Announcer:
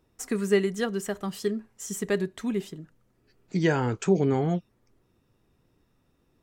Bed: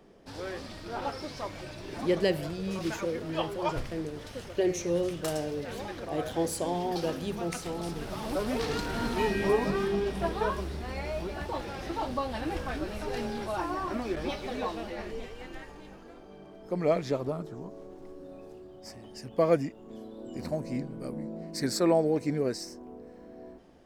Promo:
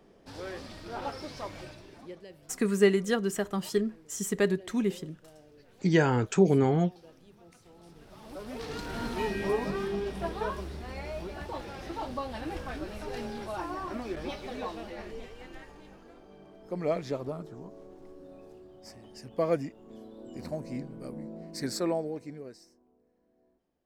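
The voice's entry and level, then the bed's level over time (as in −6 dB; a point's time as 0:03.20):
2.30 s, +0.5 dB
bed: 0:01.64 −2 dB
0:02.26 −23 dB
0:07.55 −23 dB
0:08.94 −3.5 dB
0:21.77 −3.5 dB
0:22.93 −23 dB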